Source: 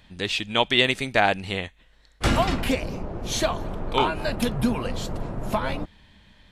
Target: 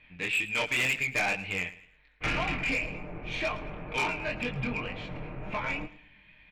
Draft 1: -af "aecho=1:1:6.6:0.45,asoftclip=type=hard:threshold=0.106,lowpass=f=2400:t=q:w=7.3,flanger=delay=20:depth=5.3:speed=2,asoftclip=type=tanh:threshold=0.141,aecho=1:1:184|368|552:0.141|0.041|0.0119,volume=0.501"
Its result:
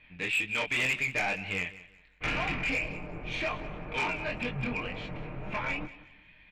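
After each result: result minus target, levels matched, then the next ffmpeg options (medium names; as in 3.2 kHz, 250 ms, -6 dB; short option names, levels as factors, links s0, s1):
echo 74 ms late; hard clipper: distortion +8 dB
-af "aecho=1:1:6.6:0.45,asoftclip=type=hard:threshold=0.106,lowpass=f=2400:t=q:w=7.3,flanger=delay=20:depth=5.3:speed=2,asoftclip=type=tanh:threshold=0.141,aecho=1:1:110|220|330:0.141|0.041|0.0119,volume=0.501"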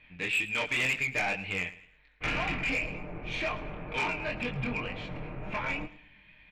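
hard clipper: distortion +8 dB
-af "aecho=1:1:6.6:0.45,asoftclip=type=hard:threshold=0.224,lowpass=f=2400:t=q:w=7.3,flanger=delay=20:depth=5.3:speed=2,asoftclip=type=tanh:threshold=0.141,aecho=1:1:110|220|330:0.141|0.041|0.0119,volume=0.501"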